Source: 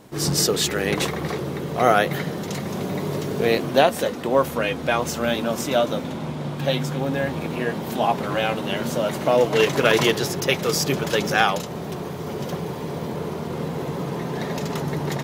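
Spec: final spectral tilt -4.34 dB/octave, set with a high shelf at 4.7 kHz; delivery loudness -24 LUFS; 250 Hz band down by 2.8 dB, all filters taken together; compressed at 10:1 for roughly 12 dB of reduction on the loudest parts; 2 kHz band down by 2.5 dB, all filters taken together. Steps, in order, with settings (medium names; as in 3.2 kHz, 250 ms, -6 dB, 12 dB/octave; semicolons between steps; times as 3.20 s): peaking EQ 250 Hz -4 dB; peaking EQ 2 kHz -4 dB; treble shelf 4.7 kHz +3.5 dB; compression 10:1, threshold -25 dBFS; trim +6 dB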